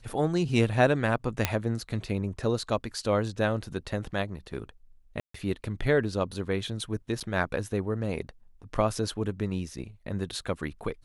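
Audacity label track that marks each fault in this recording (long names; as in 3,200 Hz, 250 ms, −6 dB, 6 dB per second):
1.450000	1.450000	click −7 dBFS
5.200000	5.340000	drop-out 144 ms
7.200000	7.210000	drop-out 7.3 ms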